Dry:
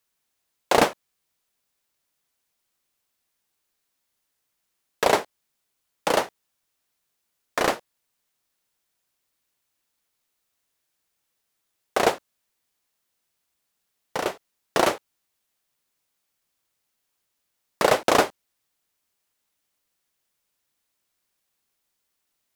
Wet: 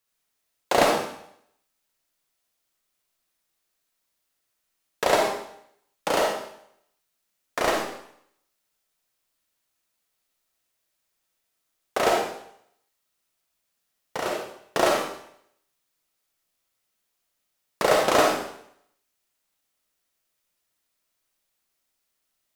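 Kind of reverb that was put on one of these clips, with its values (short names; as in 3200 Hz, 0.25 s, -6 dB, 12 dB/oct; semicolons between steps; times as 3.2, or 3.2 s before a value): digital reverb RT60 0.7 s, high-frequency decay 1×, pre-delay 10 ms, DRR -1 dB; gain -3.5 dB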